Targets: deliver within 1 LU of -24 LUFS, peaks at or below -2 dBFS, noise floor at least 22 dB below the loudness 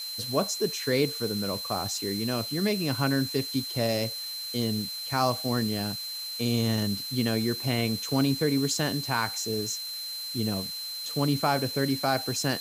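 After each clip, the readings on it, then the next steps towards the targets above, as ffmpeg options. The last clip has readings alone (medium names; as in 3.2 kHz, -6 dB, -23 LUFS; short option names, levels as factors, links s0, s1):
steady tone 4.1 kHz; tone level -34 dBFS; noise floor -36 dBFS; noise floor target -50 dBFS; loudness -28.0 LUFS; peak level -11.5 dBFS; loudness target -24.0 LUFS
-> -af "bandreject=f=4100:w=30"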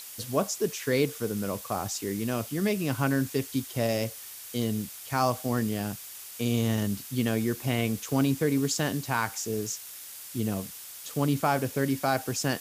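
steady tone not found; noise floor -43 dBFS; noise floor target -51 dBFS
-> -af "afftdn=nr=8:nf=-43"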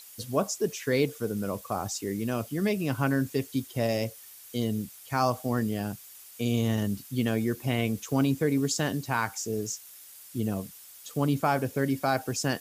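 noise floor -49 dBFS; noise floor target -52 dBFS
-> -af "afftdn=nr=6:nf=-49"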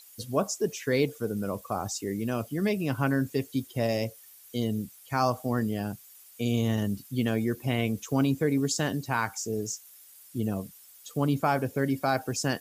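noise floor -53 dBFS; loudness -29.5 LUFS; peak level -12.0 dBFS; loudness target -24.0 LUFS
-> -af "volume=1.88"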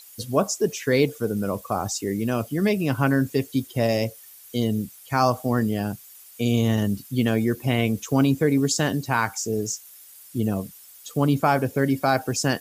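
loudness -24.0 LUFS; peak level -6.5 dBFS; noise floor -47 dBFS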